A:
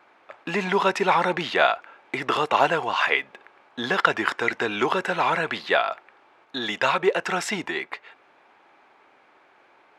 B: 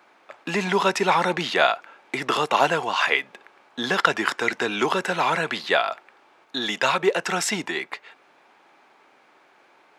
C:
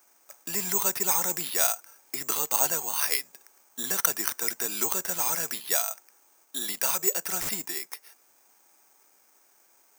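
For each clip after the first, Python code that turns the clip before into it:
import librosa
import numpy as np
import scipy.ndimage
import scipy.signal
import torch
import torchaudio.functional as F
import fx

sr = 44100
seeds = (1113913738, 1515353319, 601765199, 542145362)

y1 = scipy.signal.sosfilt(scipy.signal.butter(4, 130.0, 'highpass', fs=sr, output='sos'), x)
y1 = fx.bass_treble(y1, sr, bass_db=3, treble_db=8)
y2 = (np.kron(y1[::6], np.eye(6)[0]) * 6)[:len(y1)]
y2 = F.gain(torch.from_numpy(y2), -13.0).numpy()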